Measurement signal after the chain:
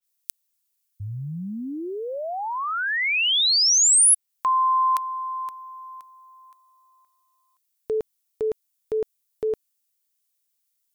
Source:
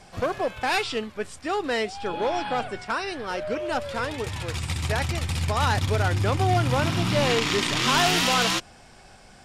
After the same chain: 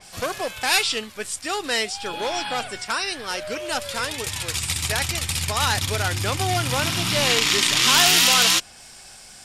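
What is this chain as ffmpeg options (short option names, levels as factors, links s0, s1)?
-af "crystalizer=i=7.5:c=0,adynamicequalizer=threshold=0.0447:dfrequency=4300:dqfactor=0.7:tfrequency=4300:tqfactor=0.7:attack=5:release=100:ratio=0.375:range=2:mode=cutabove:tftype=highshelf,volume=0.668"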